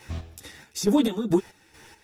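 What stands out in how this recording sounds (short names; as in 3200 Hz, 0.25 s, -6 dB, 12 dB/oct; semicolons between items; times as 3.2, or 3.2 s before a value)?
a quantiser's noise floor 12-bit, dither triangular; chopped level 2.3 Hz, depth 65%, duty 45%; a shimmering, thickened sound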